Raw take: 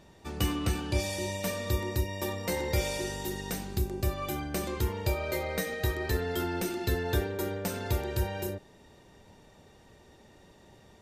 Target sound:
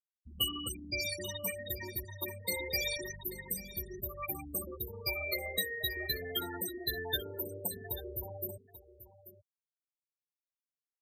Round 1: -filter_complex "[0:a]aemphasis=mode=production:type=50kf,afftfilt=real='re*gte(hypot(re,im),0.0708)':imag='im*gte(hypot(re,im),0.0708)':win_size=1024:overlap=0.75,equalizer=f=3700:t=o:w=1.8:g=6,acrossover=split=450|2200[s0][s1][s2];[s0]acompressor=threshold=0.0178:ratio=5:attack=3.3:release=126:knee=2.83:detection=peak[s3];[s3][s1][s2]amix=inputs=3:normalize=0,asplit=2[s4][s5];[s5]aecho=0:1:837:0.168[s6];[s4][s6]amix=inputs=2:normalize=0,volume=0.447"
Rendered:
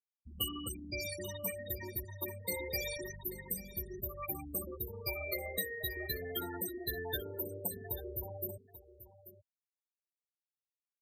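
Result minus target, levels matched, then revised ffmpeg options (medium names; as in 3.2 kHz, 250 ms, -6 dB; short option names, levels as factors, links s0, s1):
4 kHz band -4.5 dB
-filter_complex "[0:a]aemphasis=mode=production:type=50kf,afftfilt=real='re*gte(hypot(re,im),0.0708)':imag='im*gte(hypot(re,im),0.0708)':win_size=1024:overlap=0.75,equalizer=f=3700:t=o:w=1.8:g=14,acrossover=split=450|2200[s0][s1][s2];[s0]acompressor=threshold=0.0178:ratio=5:attack=3.3:release=126:knee=2.83:detection=peak[s3];[s3][s1][s2]amix=inputs=3:normalize=0,asplit=2[s4][s5];[s5]aecho=0:1:837:0.168[s6];[s4][s6]amix=inputs=2:normalize=0,volume=0.447"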